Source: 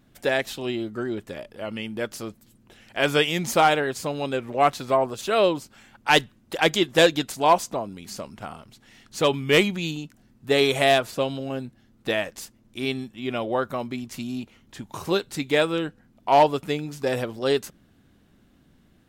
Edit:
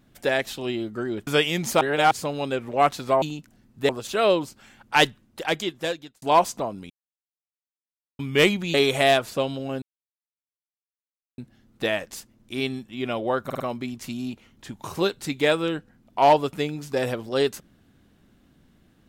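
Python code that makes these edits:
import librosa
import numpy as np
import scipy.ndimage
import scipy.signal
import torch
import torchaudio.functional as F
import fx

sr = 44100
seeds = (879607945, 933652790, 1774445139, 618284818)

y = fx.edit(x, sr, fx.cut(start_s=1.27, length_s=1.81),
    fx.reverse_span(start_s=3.62, length_s=0.3),
    fx.fade_out_span(start_s=6.15, length_s=1.21),
    fx.silence(start_s=8.04, length_s=1.29),
    fx.move(start_s=9.88, length_s=0.67, to_s=5.03),
    fx.insert_silence(at_s=11.63, length_s=1.56),
    fx.stutter(start_s=13.7, slice_s=0.05, count=4), tone=tone)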